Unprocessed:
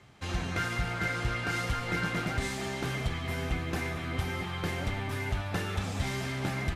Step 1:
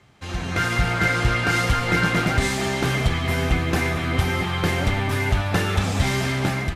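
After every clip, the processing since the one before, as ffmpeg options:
-af "dynaudnorm=f=210:g=5:m=9.5dB,volume=1.5dB"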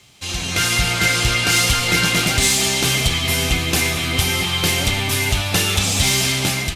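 -af "aexciter=amount=2.8:drive=8.8:freq=2.4k"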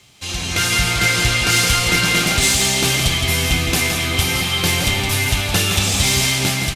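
-af "aecho=1:1:167:0.473"

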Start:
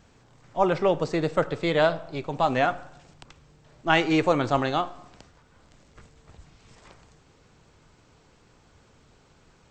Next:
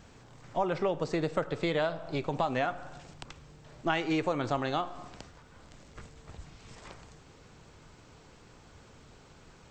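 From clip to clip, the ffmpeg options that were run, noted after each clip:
-af "acompressor=threshold=-31dB:ratio=4,volume=3dB"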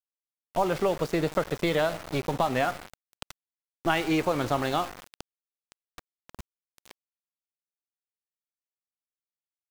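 -af "aeval=exprs='val(0)+0.00126*(sin(2*PI*50*n/s)+sin(2*PI*2*50*n/s)/2+sin(2*PI*3*50*n/s)/3+sin(2*PI*4*50*n/s)/4+sin(2*PI*5*50*n/s)/5)':c=same,aeval=exprs='val(0)*gte(abs(val(0)),0.0133)':c=same,volume=4dB"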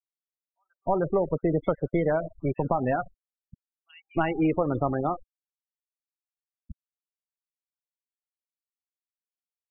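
-filter_complex "[0:a]tiltshelf=f=710:g=3.5,afftfilt=real='re*gte(hypot(re,im),0.0631)':imag='im*gte(hypot(re,im),0.0631)':win_size=1024:overlap=0.75,acrossover=split=3500[a][b];[a]adelay=310[c];[c][b]amix=inputs=2:normalize=0"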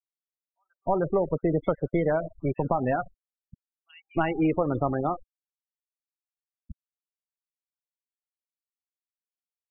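-af anull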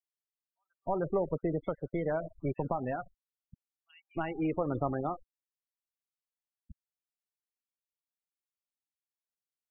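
-af "tremolo=f=0.83:d=0.36,volume=-5.5dB"

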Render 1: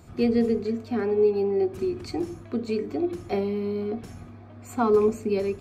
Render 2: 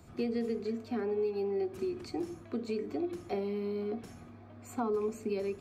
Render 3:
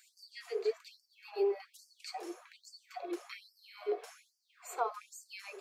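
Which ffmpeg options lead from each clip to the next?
-filter_complex "[0:a]acrossover=split=160|1000[a][b][c];[a]acompressor=threshold=-50dB:ratio=4[d];[b]acompressor=threshold=-26dB:ratio=4[e];[c]acompressor=threshold=-42dB:ratio=4[f];[d][e][f]amix=inputs=3:normalize=0,volume=-5dB"
-af "flanger=delay=1.8:depth=6:regen=-51:speed=1.3:shape=sinusoidal,afftfilt=real='re*gte(b*sr/1024,330*pow(4600/330,0.5+0.5*sin(2*PI*1.2*pts/sr)))':imag='im*gte(b*sr/1024,330*pow(4600/330,0.5+0.5*sin(2*PI*1.2*pts/sr)))':win_size=1024:overlap=0.75,volume=8dB"

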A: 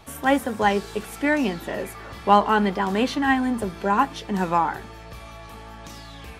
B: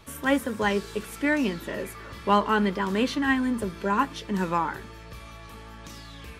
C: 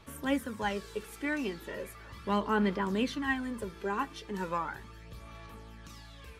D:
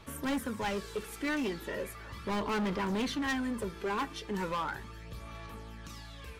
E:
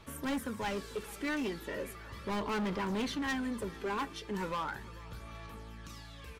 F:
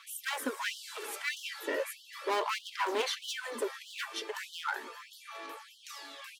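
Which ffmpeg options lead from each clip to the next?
-af "equalizer=f=750:t=o:w=0.26:g=-14.5,volume=-2dB"
-af "aphaser=in_gain=1:out_gain=1:delay=2.6:decay=0.42:speed=0.37:type=sinusoidal,volume=-8.5dB"
-af "asoftclip=type=hard:threshold=-32dB,volume=3dB"
-af "aecho=1:1:443:0.1,volume=-2dB"
-af "afftfilt=real='re*gte(b*sr/1024,240*pow(2900/240,0.5+0.5*sin(2*PI*1.6*pts/sr)))':imag='im*gte(b*sr/1024,240*pow(2900/240,0.5+0.5*sin(2*PI*1.6*pts/sr)))':win_size=1024:overlap=0.75,volume=6.5dB"

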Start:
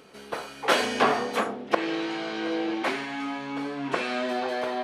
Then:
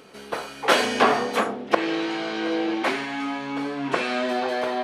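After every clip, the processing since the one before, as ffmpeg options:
-af "bandreject=f=50:t=h:w=6,bandreject=f=100:t=h:w=6,bandreject=f=150:t=h:w=6,volume=3.5dB"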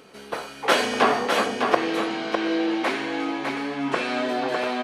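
-af "aecho=1:1:605:0.562,volume=-1dB"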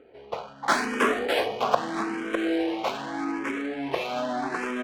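-filter_complex "[0:a]adynamicsmooth=sensitivity=4:basefreq=1.3k,asplit=2[a][b];[b]afreqshift=0.81[c];[a][c]amix=inputs=2:normalize=1"

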